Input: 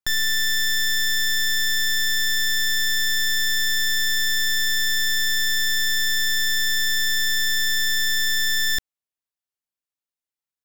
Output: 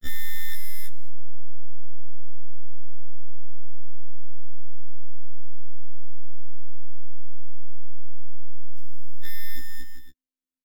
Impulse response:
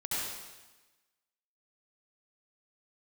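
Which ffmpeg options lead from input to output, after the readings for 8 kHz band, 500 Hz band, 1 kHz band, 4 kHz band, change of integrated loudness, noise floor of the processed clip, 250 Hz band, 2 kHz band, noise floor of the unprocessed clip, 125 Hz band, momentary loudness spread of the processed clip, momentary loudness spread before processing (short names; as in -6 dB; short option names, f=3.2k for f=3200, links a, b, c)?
-26.5 dB, n/a, -20.0 dB, -30.0 dB, -19.5 dB, -67 dBFS, -4.0 dB, -26.0 dB, under -85 dBFS, +10.0 dB, 19 LU, 0 LU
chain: -filter_complex "[0:a]lowshelf=f=470:t=q:w=3:g=11.5,asplit=2[a][b];[b]aecho=0:1:470|799|1029|1191|1303:0.631|0.398|0.251|0.158|0.1[c];[a][c]amix=inputs=2:normalize=0,aeval=exprs='0.282*(cos(1*acos(clip(val(0)/0.282,-1,1)))-cos(1*PI/2))+0.0282*(cos(4*acos(clip(val(0)/0.282,-1,1)))-cos(4*PI/2))':c=same,afftfilt=real='hypot(re,im)*cos(PI*b)':imag='0':win_size=2048:overlap=0.75,afftfilt=real='re*1.73*eq(mod(b,3),0)':imag='im*1.73*eq(mod(b,3),0)':win_size=2048:overlap=0.75,volume=-3dB"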